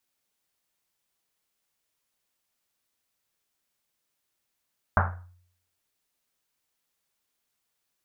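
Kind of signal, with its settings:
drum after Risset, pitch 89 Hz, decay 0.66 s, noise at 1,100 Hz, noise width 1,000 Hz, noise 45%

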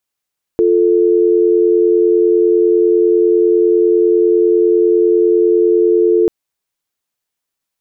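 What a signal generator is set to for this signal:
call progress tone dial tone, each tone −11 dBFS 5.69 s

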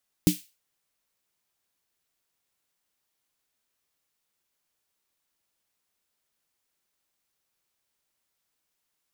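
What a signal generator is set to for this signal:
synth snare length 0.32 s, tones 180 Hz, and 300 Hz, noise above 2,500 Hz, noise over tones −11 dB, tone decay 0.14 s, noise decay 0.32 s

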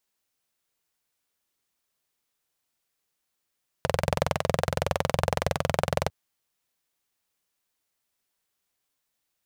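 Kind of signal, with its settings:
pulse-train model of a single-cylinder engine, steady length 2.25 s, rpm 2,600, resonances 92/140/540 Hz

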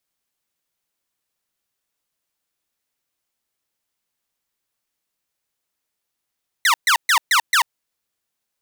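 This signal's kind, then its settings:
repeated falling chirps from 2,100 Hz, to 860 Hz, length 0.09 s saw, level −10 dB, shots 5, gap 0.13 s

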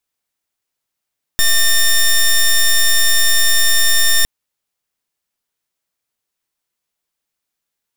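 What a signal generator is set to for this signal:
pulse wave 1,810 Hz, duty 10% −11 dBFS 2.86 s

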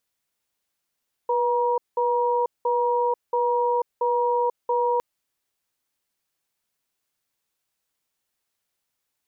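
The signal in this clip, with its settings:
tone pair in a cadence 487 Hz, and 952 Hz, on 0.49 s, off 0.19 s, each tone −22 dBFS 3.71 s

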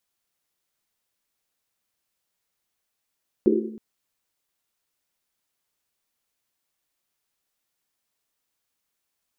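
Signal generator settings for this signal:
drum after Risset length 0.32 s, pitch 220 Hz, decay 1.14 s, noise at 360 Hz, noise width 120 Hz, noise 65%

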